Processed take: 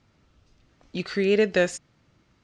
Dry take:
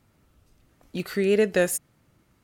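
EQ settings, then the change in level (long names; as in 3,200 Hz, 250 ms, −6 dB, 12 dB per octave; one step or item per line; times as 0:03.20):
low-pass filter 6,500 Hz 24 dB per octave
high-frequency loss of the air 77 metres
high-shelf EQ 3,300 Hz +10 dB
0.0 dB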